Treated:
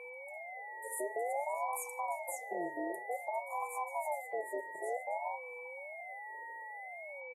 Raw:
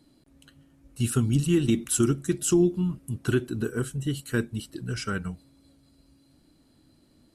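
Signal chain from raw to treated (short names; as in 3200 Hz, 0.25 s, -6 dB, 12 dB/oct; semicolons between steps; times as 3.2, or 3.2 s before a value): spectral delay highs early, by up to 0.137 s; inverse Chebyshev band-stop 270–5500 Hz, stop band 40 dB; bell 12000 Hz -7 dB 1.5 oct; comb 3.2 ms, depth 32%; in parallel at -0.5 dB: compressor, threshold -46 dBFS, peak gain reduction 17.5 dB; on the sum: limiter -30.5 dBFS, peak gain reduction 8.5 dB; whine 1400 Hz -45 dBFS; speakerphone echo 0.33 s, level -15 dB; on a send at -17 dB: reverb RT60 0.60 s, pre-delay 3 ms; on the sum: ring modulator with a swept carrier 700 Hz, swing 30%, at 0.54 Hz; gain +2.5 dB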